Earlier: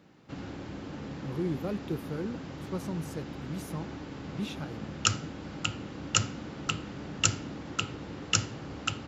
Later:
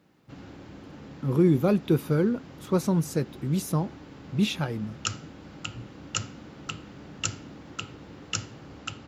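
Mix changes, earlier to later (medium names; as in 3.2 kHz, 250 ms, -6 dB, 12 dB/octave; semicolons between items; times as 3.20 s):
speech +11.5 dB; background -4.5 dB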